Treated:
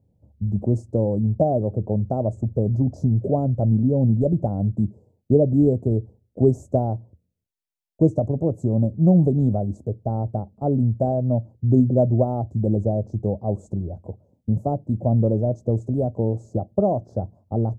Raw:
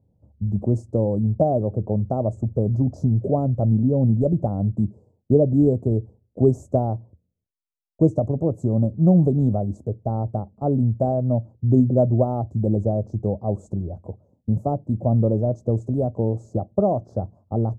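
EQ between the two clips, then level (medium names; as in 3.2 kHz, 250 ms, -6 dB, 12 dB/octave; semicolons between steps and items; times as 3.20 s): peaking EQ 1.2 kHz -6.5 dB 0.47 oct; 0.0 dB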